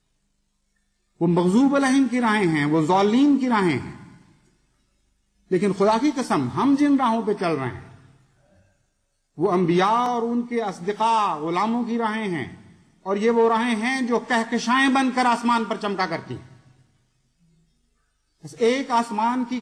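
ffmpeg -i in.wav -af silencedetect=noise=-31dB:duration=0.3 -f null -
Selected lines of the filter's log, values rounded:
silence_start: 0.00
silence_end: 1.21 | silence_duration: 1.21
silence_start: 3.96
silence_end: 5.51 | silence_duration: 1.55
silence_start: 7.78
silence_end: 9.39 | silence_duration: 1.60
silence_start: 12.54
silence_end: 13.06 | silence_duration: 0.52
silence_start: 16.37
silence_end: 18.45 | silence_duration: 2.07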